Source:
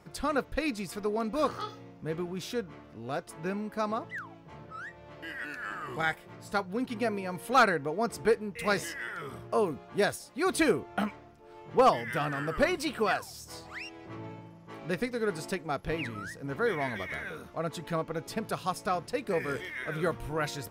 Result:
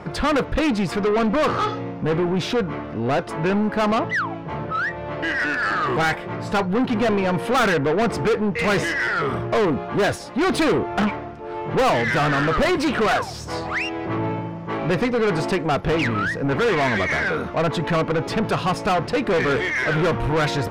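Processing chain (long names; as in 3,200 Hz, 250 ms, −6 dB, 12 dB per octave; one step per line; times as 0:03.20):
RIAA equalisation playback
mid-hump overdrive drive 33 dB, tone 4,000 Hz, clips at −7.5 dBFS
level −4 dB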